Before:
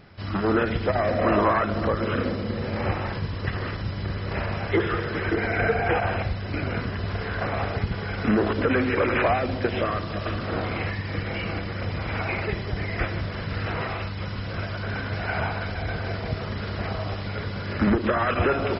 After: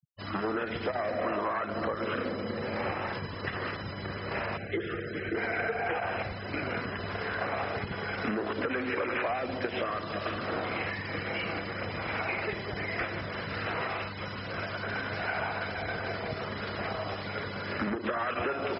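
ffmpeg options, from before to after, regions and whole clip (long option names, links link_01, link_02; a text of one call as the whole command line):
ffmpeg -i in.wav -filter_complex "[0:a]asettb=1/sr,asplit=3[link_01][link_02][link_03];[link_01]atrim=end=4.574[link_04];[link_02]atrim=start=4.57:end=5.35,asetpts=PTS-STARTPTS,afade=type=in:duration=0.004:curve=qsin,afade=type=out:start_time=0.776:duration=0.004:curve=qsin,lowpass=frequency=3600:poles=1,equalizer=frequency=990:width_type=o:width=1.3:gain=-15[link_05];[link_03]atrim=start=5.346[link_06];[link_04][link_05]acrossfade=duration=0.004:curve1=hsin:curve2=qsin[link_07];[link_07][link_06]acrossfade=duration=0.004:curve1=qsin:curve2=hsin,highpass=frequency=360:poles=1,afftfilt=real='re*gte(hypot(re,im),0.0112)':imag='im*gte(hypot(re,im),0.0112)':win_size=1024:overlap=0.75,acompressor=threshold=-28dB:ratio=6" out.wav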